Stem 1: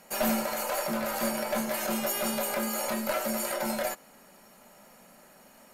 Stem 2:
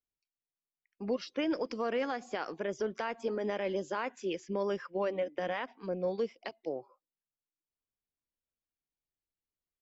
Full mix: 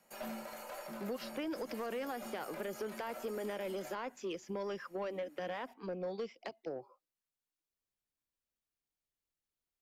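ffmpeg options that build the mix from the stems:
ffmpeg -i stem1.wav -i stem2.wav -filter_complex "[0:a]volume=-14.5dB[link_01];[1:a]volume=0dB,asplit=2[link_02][link_03];[link_03]apad=whole_len=252900[link_04];[link_01][link_04]sidechaincompress=threshold=-35dB:ratio=8:attack=16:release=125[link_05];[link_05][link_02]amix=inputs=2:normalize=0,acrossover=split=160|1200|4600[link_06][link_07][link_08][link_09];[link_06]acompressor=threshold=-57dB:ratio=4[link_10];[link_07]acompressor=threshold=-36dB:ratio=4[link_11];[link_08]acompressor=threshold=-47dB:ratio=4[link_12];[link_09]acompressor=threshold=-55dB:ratio=4[link_13];[link_10][link_11][link_12][link_13]amix=inputs=4:normalize=0,asoftclip=type=tanh:threshold=-31.5dB" out.wav

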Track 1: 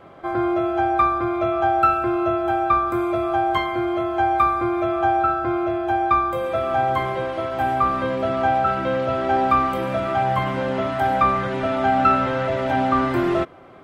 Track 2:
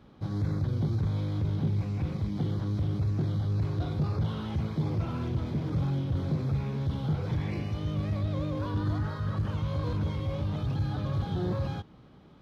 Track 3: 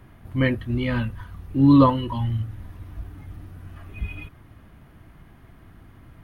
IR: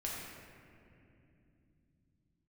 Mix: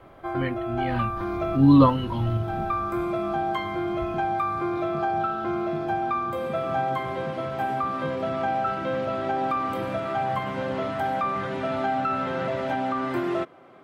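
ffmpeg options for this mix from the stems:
-filter_complex "[0:a]volume=-5dB[link_01];[1:a]aecho=1:1:4.4:0.33,adelay=950,volume=-5dB[link_02];[2:a]volume=-1dB,afade=type=in:start_time=0.75:duration=0.41:silence=0.446684,afade=type=out:start_time=2.75:duration=0.24:silence=0.354813,asplit=2[link_03][link_04];[link_04]apad=whole_len=610005[link_05];[link_01][link_05]sidechaincompress=threshold=-28dB:ratio=8:attack=16:release=709[link_06];[link_06][link_02]amix=inputs=2:normalize=0,highpass=140,alimiter=limit=-17dB:level=0:latency=1:release=203,volume=0dB[link_07];[link_03][link_07]amix=inputs=2:normalize=0"

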